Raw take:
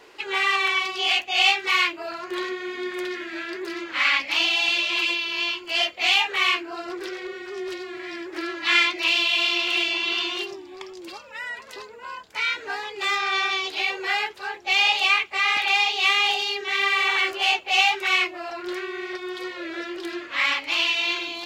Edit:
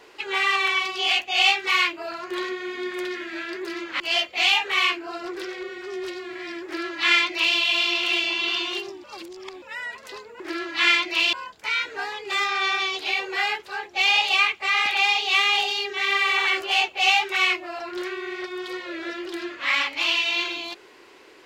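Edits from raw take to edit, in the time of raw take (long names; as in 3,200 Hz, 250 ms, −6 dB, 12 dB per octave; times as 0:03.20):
0:04.00–0:05.64: remove
0:08.28–0:09.21: duplicate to 0:12.04
0:10.68–0:11.26: reverse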